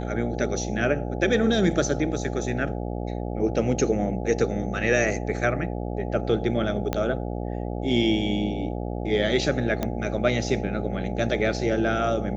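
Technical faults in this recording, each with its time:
buzz 60 Hz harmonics 14 -30 dBFS
6.93 s: pop -11 dBFS
9.83 s: pop -12 dBFS

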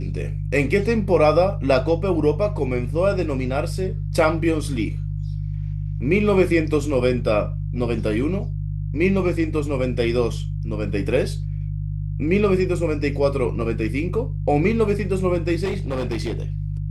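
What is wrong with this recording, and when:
hum 50 Hz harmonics 3 -26 dBFS
15.64–16.52 s: clipped -20 dBFS

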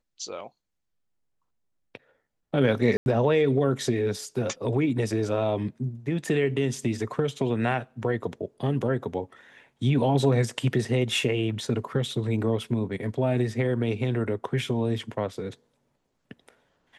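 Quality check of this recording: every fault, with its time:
2.97–3.06 s: dropout 91 ms

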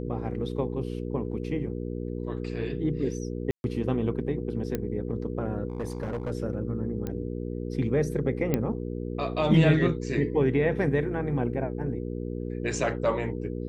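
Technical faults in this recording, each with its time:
hum 60 Hz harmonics 8 -33 dBFS
3.51–3.64 s: dropout 131 ms
4.75 s: pop -15 dBFS
5.68–6.32 s: clipped -27 dBFS
7.07 s: pop -20 dBFS
8.54 s: pop -12 dBFS

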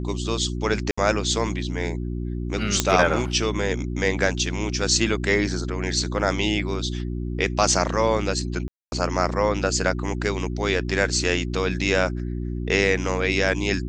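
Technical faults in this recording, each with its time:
hum 60 Hz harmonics 6 -28 dBFS
0.91–0.97 s: dropout 65 ms
2.80 s: pop -3 dBFS
8.68–8.92 s: dropout 241 ms

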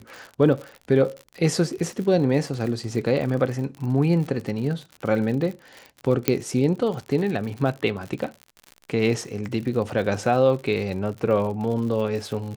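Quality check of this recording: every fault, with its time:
crackle 71 per s -31 dBFS
6.28 s: pop -4 dBFS

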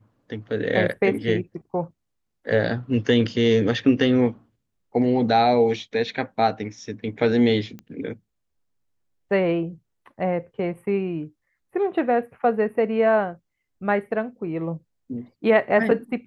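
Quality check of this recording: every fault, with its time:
7.79 s: pop -25 dBFS

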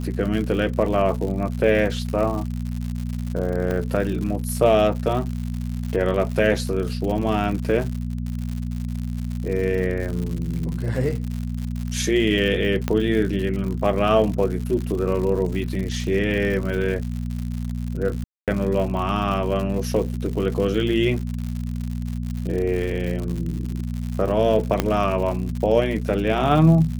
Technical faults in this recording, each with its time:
crackle 120 per s -28 dBFS
hum 60 Hz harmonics 4 -27 dBFS
3.71 s: pop -14 dBFS
12.88 s: pop -9 dBFS
18.24–18.48 s: dropout 237 ms
24.80 s: pop -5 dBFS

